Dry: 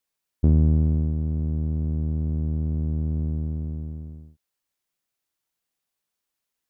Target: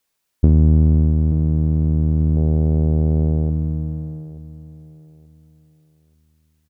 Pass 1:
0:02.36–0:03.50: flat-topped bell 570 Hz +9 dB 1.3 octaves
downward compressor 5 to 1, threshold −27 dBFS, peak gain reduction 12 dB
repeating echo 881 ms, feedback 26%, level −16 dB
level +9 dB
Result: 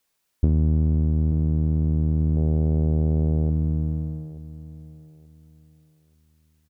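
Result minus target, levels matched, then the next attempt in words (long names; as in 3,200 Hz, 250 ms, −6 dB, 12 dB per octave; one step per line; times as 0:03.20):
downward compressor: peak gain reduction +7 dB
0:02.36–0:03.50: flat-topped bell 570 Hz +9 dB 1.3 octaves
downward compressor 5 to 1, threshold −18 dBFS, peak gain reduction 5 dB
repeating echo 881 ms, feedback 26%, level −16 dB
level +9 dB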